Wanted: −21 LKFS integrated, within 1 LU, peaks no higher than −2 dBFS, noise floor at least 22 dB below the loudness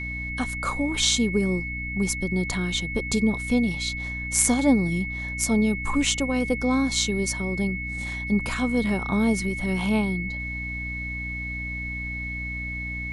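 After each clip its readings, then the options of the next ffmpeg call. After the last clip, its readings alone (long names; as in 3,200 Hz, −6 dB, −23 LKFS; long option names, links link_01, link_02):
mains hum 60 Hz; hum harmonics up to 300 Hz; level of the hum −32 dBFS; interfering tone 2,200 Hz; level of the tone −31 dBFS; integrated loudness −25.0 LKFS; sample peak −4.0 dBFS; target loudness −21.0 LKFS
→ -af "bandreject=frequency=60:width_type=h:width=4,bandreject=frequency=120:width_type=h:width=4,bandreject=frequency=180:width_type=h:width=4,bandreject=frequency=240:width_type=h:width=4,bandreject=frequency=300:width_type=h:width=4"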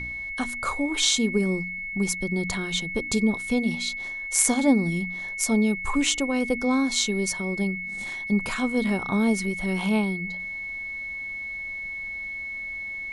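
mains hum none found; interfering tone 2,200 Hz; level of the tone −31 dBFS
→ -af "bandreject=frequency=2200:width=30"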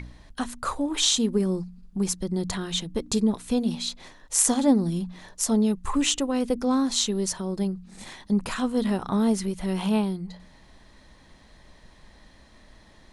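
interfering tone none found; integrated loudness −25.5 LKFS; sample peak −3.5 dBFS; target loudness −21.0 LKFS
→ -af "volume=4.5dB,alimiter=limit=-2dB:level=0:latency=1"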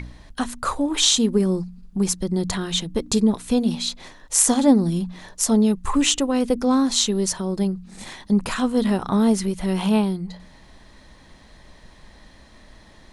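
integrated loudness −21.0 LKFS; sample peak −2.0 dBFS; background noise floor −49 dBFS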